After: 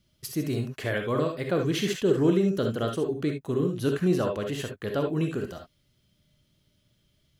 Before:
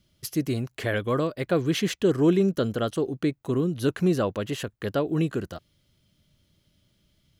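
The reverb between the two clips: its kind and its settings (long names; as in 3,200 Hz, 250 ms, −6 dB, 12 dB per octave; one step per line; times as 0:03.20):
reverb whose tail is shaped and stops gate 90 ms rising, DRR 3 dB
level −3 dB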